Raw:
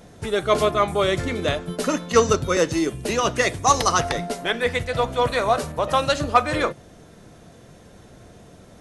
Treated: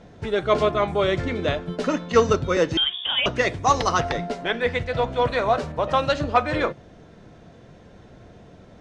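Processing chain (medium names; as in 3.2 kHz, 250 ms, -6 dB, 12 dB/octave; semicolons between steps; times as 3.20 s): distance through air 140 m; band-stop 1.2 kHz, Q 21; 2.77–3.26 s: frequency inversion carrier 3.5 kHz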